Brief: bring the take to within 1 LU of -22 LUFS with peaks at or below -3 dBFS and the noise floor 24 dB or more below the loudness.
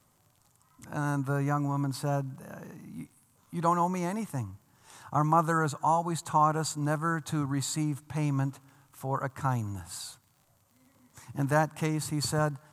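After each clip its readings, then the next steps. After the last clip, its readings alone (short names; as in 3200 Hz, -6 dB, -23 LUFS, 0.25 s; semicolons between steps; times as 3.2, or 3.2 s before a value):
ticks 54/s; loudness -30.0 LUFS; peak -11.5 dBFS; loudness target -22.0 LUFS
-> de-click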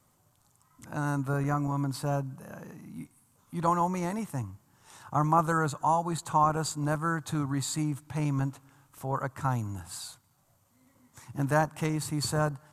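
ticks 0.079/s; loudness -30.0 LUFS; peak -11.5 dBFS; loudness target -22.0 LUFS
-> gain +8 dB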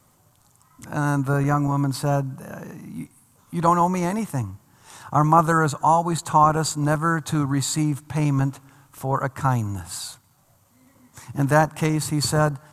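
loudness -22.0 LUFS; peak -3.5 dBFS; noise floor -60 dBFS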